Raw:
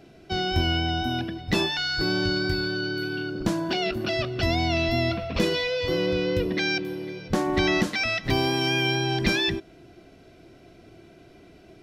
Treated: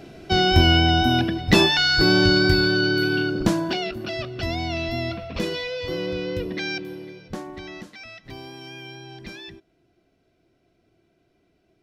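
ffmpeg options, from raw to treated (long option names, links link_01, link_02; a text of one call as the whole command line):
ffmpeg -i in.wav -af "volume=8dB,afade=type=out:start_time=3.18:duration=0.72:silence=0.281838,afade=type=out:start_time=6.95:duration=0.65:silence=0.237137" out.wav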